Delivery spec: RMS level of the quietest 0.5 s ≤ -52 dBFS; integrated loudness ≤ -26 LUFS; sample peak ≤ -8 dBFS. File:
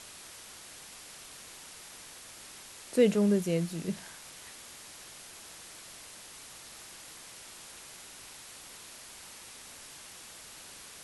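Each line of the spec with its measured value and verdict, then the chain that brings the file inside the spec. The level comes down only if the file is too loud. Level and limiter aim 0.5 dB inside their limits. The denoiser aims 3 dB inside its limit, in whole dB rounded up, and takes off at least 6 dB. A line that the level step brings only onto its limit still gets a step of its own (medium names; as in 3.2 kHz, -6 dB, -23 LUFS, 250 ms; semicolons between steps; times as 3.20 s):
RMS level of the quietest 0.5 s -49 dBFS: fail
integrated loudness -37.0 LUFS: pass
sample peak -12.5 dBFS: pass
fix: noise reduction 6 dB, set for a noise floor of -49 dBFS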